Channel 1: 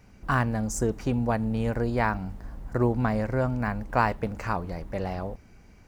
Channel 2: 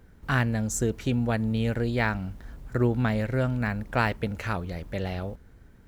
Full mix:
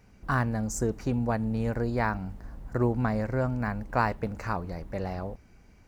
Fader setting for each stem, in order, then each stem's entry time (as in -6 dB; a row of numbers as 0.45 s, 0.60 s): -3.5 dB, -16.0 dB; 0.00 s, 0.00 s